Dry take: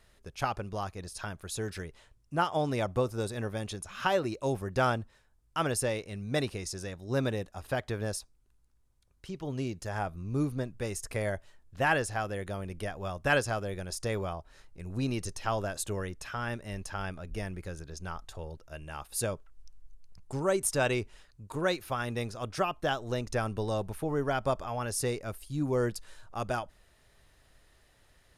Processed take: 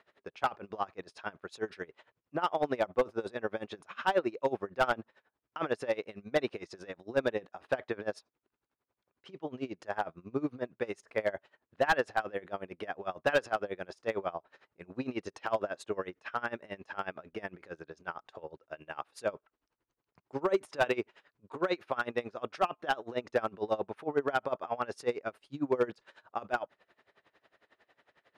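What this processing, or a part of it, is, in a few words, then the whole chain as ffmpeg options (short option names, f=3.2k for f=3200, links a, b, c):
helicopter radio: -af "highpass=320,lowpass=2.5k,aeval=exprs='val(0)*pow(10,-22*(0.5-0.5*cos(2*PI*11*n/s))/20)':c=same,asoftclip=type=hard:threshold=-26dB,volume=7dB"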